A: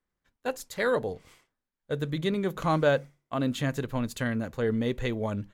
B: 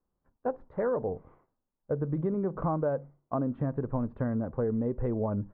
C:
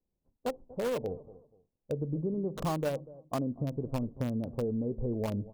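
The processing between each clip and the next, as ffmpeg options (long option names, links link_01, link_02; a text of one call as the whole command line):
ffmpeg -i in.wav -af "lowpass=frequency=1100:width=0.5412,lowpass=frequency=1100:width=1.3066,acompressor=threshold=-30dB:ratio=6,volume=4dB" out.wav
ffmpeg -i in.wav -filter_complex "[0:a]acrossover=split=780[link_01][link_02];[link_01]aecho=1:1:241|482:0.141|0.0339[link_03];[link_02]acrusher=bits=5:mix=0:aa=0.000001[link_04];[link_03][link_04]amix=inputs=2:normalize=0,volume=-2.5dB" out.wav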